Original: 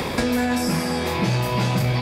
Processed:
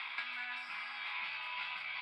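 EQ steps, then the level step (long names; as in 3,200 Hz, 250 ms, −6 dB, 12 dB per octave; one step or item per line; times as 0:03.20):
four-pole ladder band-pass 2,000 Hz, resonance 70%
high-frequency loss of the air 59 metres
phaser with its sweep stopped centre 1,800 Hz, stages 6
+4.0 dB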